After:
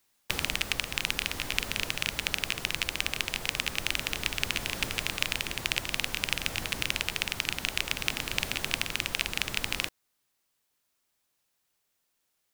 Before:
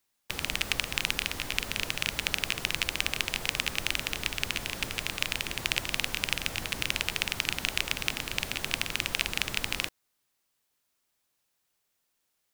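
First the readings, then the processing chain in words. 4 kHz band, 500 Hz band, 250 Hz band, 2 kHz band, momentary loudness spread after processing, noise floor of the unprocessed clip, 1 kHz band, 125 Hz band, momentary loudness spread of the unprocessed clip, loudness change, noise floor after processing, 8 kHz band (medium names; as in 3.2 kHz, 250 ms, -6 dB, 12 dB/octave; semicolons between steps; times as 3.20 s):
0.0 dB, 0.0 dB, 0.0 dB, 0.0 dB, 2 LU, -78 dBFS, 0.0 dB, 0.0 dB, 3 LU, 0.0 dB, -77 dBFS, 0.0 dB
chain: gain riding 0.5 s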